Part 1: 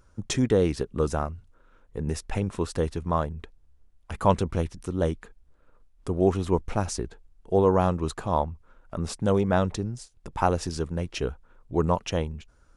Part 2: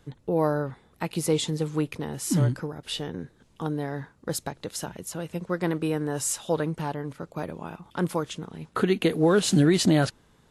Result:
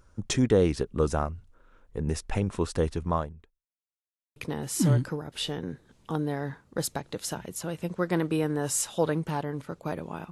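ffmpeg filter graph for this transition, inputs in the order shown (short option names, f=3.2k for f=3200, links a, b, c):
-filter_complex "[0:a]apad=whole_dur=10.31,atrim=end=10.31,asplit=2[a][b];[a]atrim=end=3.67,asetpts=PTS-STARTPTS,afade=t=out:st=3.08:d=0.59:c=qua[c];[b]atrim=start=3.67:end=4.36,asetpts=PTS-STARTPTS,volume=0[d];[1:a]atrim=start=1.87:end=7.82,asetpts=PTS-STARTPTS,afade=t=in:d=0.004:c=hsin[e];[c][d][e]concat=n=3:v=0:a=1"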